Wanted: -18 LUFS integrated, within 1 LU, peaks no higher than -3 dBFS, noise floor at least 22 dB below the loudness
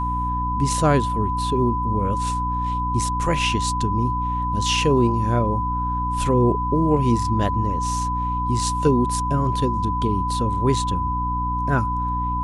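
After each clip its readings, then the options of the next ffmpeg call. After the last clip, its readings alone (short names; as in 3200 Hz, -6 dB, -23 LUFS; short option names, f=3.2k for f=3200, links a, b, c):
hum 60 Hz; harmonics up to 300 Hz; hum level -24 dBFS; steady tone 1000 Hz; tone level -23 dBFS; loudness -21.5 LUFS; peak -5.5 dBFS; loudness target -18.0 LUFS
-> -af "bandreject=f=60:t=h:w=6,bandreject=f=120:t=h:w=6,bandreject=f=180:t=h:w=6,bandreject=f=240:t=h:w=6,bandreject=f=300:t=h:w=6"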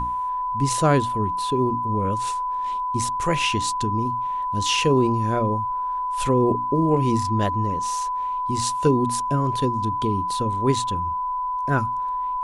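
hum none; steady tone 1000 Hz; tone level -23 dBFS
-> -af "bandreject=f=1k:w=30"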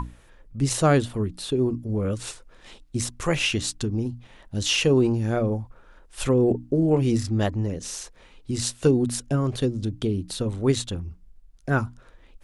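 steady tone none; loudness -24.5 LUFS; peak -7.5 dBFS; loudness target -18.0 LUFS
-> -af "volume=6.5dB,alimiter=limit=-3dB:level=0:latency=1"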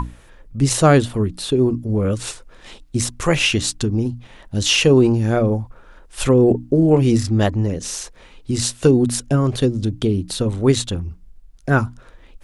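loudness -18.5 LUFS; peak -3.0 dBFS; noise floor -47 dBFS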